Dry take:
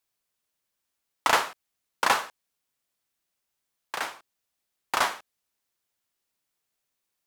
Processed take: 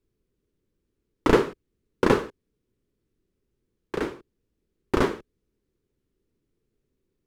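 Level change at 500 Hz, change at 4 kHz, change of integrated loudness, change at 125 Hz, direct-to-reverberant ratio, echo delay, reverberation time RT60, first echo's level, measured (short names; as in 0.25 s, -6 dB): +12.0 dB, -6.5 dB, +2.0 dB, +20.5 dB, none, none, none, none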